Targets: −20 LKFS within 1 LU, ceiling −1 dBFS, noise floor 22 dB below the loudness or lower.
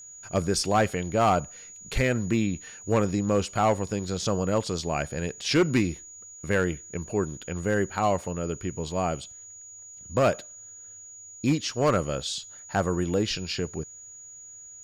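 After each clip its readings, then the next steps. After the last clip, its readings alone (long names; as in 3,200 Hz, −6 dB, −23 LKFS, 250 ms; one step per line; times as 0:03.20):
share of clipped samples 0.7%; peaks flattened at −15.5 dBFS; interfering tone 6,800 Hz; level of the tone −43 dBFS; integrated loudness −27.0 LKFS; sample peak −15.5 dBFS; target loudness −20.0 LKFS
→ clipped peaks rebuilt −15.5 dBFS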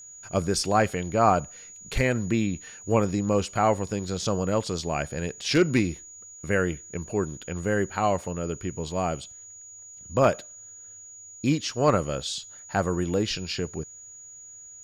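share of clipped samples 0.0%; interfering tone 6,800 Hz; level of the tone −43 dBFS
→ notch filter 6,800 Hz, Q 30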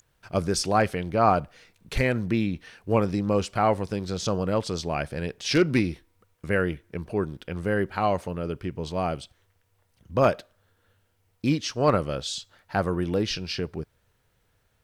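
interfering tone none found; integrated loudness −26.5 LKFS; sample peak −6.5 dBFS; target loudness −20.0 LKFS
→ level +6.5 dB
brickwall limiter −1 dBFS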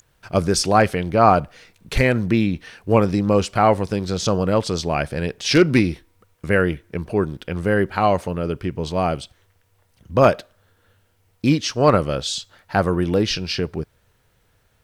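integrated loudness −20.0 LKFS; sample peak −1.0 dBFS; background noise floor −63 dBFS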